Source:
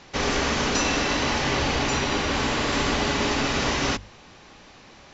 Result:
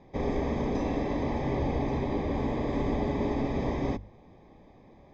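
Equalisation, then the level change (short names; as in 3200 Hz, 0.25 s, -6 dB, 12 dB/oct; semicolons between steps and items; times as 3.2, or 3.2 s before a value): running mean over 31 samples; -1.5 dB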